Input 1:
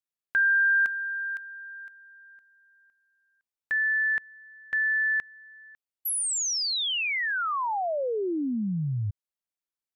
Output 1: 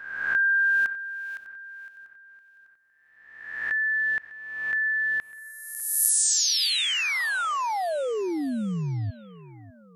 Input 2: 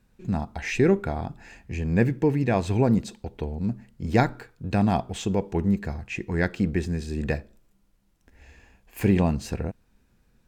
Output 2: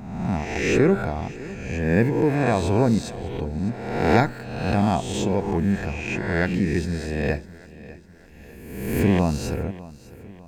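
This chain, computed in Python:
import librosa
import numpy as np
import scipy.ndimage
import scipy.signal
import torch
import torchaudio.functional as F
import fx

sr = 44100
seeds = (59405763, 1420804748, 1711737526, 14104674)

y = fx.spec_swells(x, sr, rise_s=1.08)
y = fx.echo_feedback(y, sr, ms=601, feedback_pct=46, wet_db=-18.5)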